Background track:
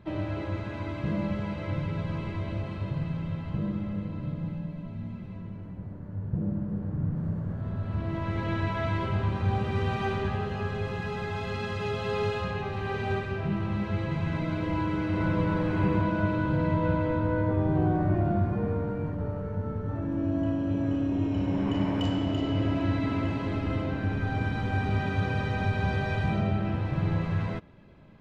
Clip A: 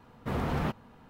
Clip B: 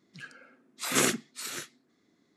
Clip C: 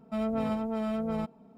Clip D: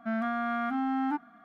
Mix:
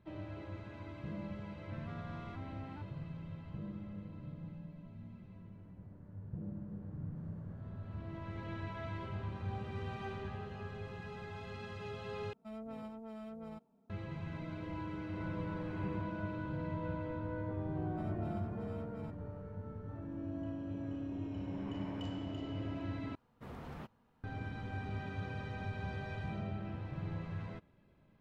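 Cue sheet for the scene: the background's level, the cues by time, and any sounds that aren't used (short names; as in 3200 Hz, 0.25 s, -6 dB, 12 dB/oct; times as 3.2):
background track -13.5 dB
1.65 add D -17.5 dB + soft clip -28.5 dBFS
12.33 replace with C -16 dB
17.85 add C -17.5 dB
23.15 replace with A -17 dB
not used: B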